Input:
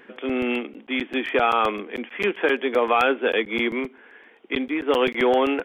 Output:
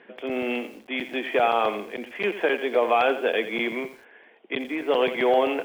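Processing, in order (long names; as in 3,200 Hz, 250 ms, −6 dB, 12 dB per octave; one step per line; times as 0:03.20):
loudspeaker in its box 120–4,100 Hz, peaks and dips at 270 Hz −4 dB, 650 Hz +7 dB, 1,300 Hz −5 dB
feedback echo at a low word length 86 ms, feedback 35%, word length 7 bits, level −11.5 dB
level −2.5 dB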